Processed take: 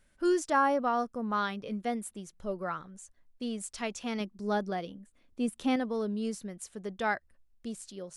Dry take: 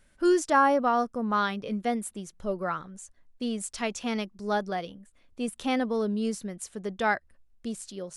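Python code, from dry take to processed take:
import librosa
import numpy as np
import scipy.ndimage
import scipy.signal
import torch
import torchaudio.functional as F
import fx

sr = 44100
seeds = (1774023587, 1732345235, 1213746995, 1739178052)

y = fx.peak_eq(x, sr, hz=260.0, db=6.0, octaves=1.4, at=(4.2, 5.76))
y = F.gain(torch.from_numpy(y), -4.5).numpy()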